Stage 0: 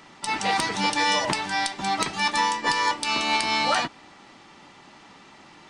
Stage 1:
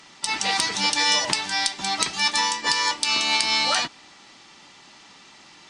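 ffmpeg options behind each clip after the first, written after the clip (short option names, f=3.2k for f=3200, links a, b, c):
-af "equalizer=f=5.8k:w=0.43:g=12,volume=-4.5dB"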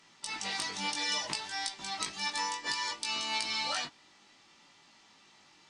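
-af "flanger=delay=18:depth=2.6:speed=0.62,volume=-9dB"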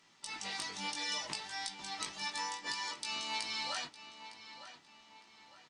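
-filter_complex "[0:a]asplit=2[a][b];[b]adelay=908,lowpass=f=4k:p=1,volume=-12dB,asplit=2[c][d];[d]adelay=908,lowpass=f=4k:p=1,volume=0.44,asplit=2[e][f];[f]adelay=908,lowpass=f=4k:p=1,volume=0.44,asplit=2[g][h];[h]adelay=908,lowpass=f=4k:p=1,volume=0.44[i];[a][c][e][g][i]amix=inputs=5:normalize=0,volume=-5dB"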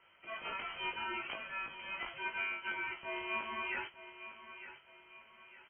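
-af "lowpass=f=2.8k:t=q:w=0.5098,lowpass=f=2.8k:t=q:w=0.6013,lowpass=f=2.8k:t=q:w=0.9,lowpass=f=2.8k:t=q:w=2.563,afreqshift=-3300,volume=2.5dB"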